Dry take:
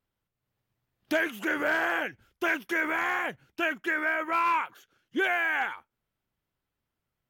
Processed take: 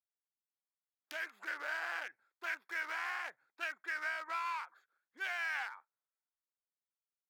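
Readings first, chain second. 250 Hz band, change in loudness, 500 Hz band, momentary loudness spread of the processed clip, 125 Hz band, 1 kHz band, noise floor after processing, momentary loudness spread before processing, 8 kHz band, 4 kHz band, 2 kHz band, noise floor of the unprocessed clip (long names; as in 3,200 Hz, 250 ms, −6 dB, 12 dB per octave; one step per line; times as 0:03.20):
−29.0 dB, −11.5 dB, −19.5 dB, 8 LU, can't be measured, −12.5 dB, below −85 dBFS, 9 LU, −8.0 dB, −9.0 dB, −10.5 dB, −85 dBFS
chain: adaptive Wiener filter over 15 samples
downward compressor 6 to 1, threshold −34 dBFS, peak gain reduction 11 dB
high-pass filter 1,100 Hz 12 dB per octave
multiband upward and downward expander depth 40%
level +1 dB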